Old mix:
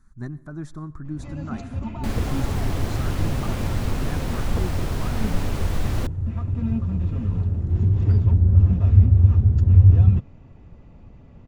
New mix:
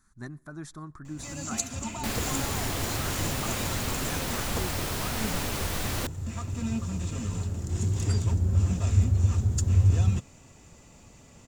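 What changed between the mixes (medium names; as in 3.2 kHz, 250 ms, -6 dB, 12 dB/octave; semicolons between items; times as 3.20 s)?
speech: send -10.0 dB; first sound: remove distance through air 270 m; master: add tilt EQ +2.5 dB/octave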